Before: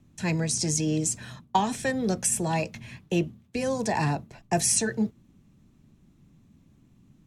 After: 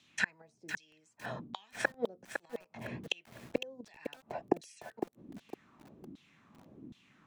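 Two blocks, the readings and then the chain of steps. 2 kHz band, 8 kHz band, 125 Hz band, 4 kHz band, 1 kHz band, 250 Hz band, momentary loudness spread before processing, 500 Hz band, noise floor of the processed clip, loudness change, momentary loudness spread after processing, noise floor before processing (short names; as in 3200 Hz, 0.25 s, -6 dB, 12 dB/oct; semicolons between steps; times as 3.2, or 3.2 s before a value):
-2.5 dB, -26.0 dB, -21.0 dB, -9.0 dB, -14.5 dB, -15.0 dB, 8 LU, -9.0 dB, -72 dBFS, -13.0 dB, 19 LU, -61 dBFS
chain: flipped gate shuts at -20 dBFS, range -35 dB; LFO band-pass saw down 1.3 Hz 260–3900 Hz; lo-fi delay 0.507 s, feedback 35%, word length 11-bit, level -7 dB; gain +16.5 dB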